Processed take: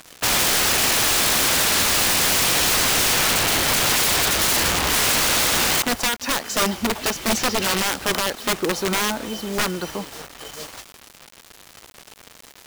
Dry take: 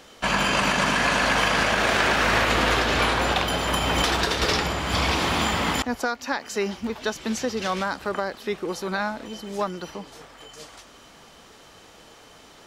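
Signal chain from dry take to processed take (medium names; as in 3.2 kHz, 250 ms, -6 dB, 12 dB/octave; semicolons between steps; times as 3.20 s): bit crusher 7-bit; integer overflow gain 20.5 dB; trim +6.5 dB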